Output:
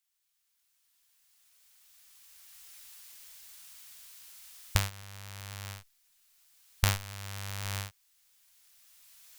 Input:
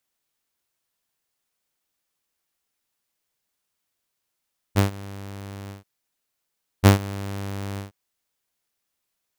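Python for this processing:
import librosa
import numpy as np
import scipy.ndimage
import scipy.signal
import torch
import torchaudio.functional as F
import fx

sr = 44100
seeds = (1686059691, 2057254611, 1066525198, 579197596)

y = fx.halfwave_gain(x, sr, db=-3.0, at=(5.01, 7.65))
y = fx.recorder_agc(y, sr, target_db=-12.0, rise_db_per_s=11.0, max_gain_db=30)
y = fx.tone_stack(y, sr, knobs='10-0-10')
y = F.gain(torch.from_numpy(y), -1.5).numpy()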